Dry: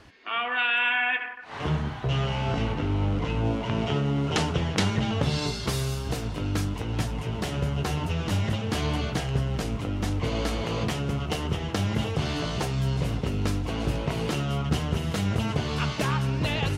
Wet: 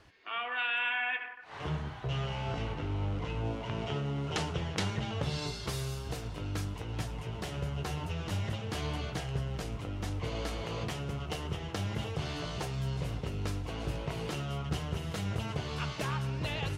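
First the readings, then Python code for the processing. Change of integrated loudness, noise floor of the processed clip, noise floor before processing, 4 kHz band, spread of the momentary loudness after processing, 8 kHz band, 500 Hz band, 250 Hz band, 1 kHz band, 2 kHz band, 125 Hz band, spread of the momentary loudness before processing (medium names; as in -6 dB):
-8.0 dB, -43 dBFS, -35 dBFS, -7.5 dB, 4 LU, -7.5 dB, -8.0 dB, -10.5 dB, -7.5 dB, -7.5 dB, -8.0 dB, 4 LU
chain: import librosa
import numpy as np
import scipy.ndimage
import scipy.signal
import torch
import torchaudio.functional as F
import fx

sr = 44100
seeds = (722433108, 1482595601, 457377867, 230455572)

p1 = fx.peak_eq(x, sr, hz=240.0, db=-6.5, octaves=0.51)
p2 = p1 + fx.echo_single(p1, sr, ms=112, db=-23.0, dry=0)
y = F.gain(torch.from_numpy(p2), -7.5).numpy()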